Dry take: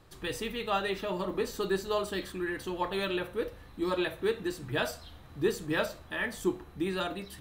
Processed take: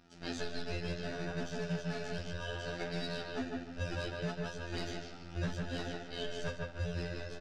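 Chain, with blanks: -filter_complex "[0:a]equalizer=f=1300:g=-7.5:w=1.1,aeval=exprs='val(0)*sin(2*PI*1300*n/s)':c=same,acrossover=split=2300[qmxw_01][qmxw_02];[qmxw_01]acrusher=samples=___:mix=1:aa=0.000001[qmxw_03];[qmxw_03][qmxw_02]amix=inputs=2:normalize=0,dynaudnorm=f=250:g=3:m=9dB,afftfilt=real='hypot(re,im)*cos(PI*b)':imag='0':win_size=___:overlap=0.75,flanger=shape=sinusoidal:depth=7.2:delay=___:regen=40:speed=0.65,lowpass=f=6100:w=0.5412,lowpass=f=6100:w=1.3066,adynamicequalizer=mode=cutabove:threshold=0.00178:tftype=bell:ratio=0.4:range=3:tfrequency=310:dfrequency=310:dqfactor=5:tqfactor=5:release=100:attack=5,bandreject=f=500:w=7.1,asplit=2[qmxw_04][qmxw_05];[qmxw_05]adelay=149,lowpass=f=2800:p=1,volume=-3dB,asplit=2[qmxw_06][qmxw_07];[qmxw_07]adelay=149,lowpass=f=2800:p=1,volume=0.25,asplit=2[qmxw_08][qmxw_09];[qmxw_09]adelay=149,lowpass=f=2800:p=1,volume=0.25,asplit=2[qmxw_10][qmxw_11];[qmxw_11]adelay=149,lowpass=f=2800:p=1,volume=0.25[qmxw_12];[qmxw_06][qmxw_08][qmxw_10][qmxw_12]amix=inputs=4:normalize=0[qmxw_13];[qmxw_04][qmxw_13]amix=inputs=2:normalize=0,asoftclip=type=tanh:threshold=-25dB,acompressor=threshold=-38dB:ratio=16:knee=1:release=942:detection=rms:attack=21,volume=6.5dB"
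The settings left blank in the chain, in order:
41, 2048, 4.1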